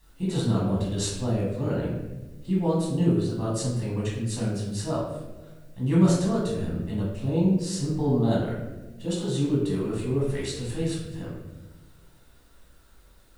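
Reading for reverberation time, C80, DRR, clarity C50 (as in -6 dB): 1.2 s, 4.5 dB, -6.0 dB, 1.5 dB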